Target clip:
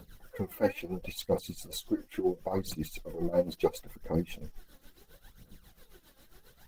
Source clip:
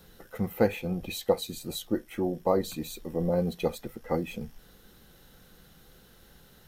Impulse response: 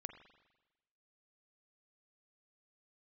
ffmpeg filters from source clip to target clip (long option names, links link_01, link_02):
-af "aphaser=in_gain=1:out_gain=1:delay=3.8:decay=0.71:speed=0.73:type=triangular,tremolo=f=7.4:d=0.78,volume=-1dB" -ar 48000 -c:a libopus -b:a 16k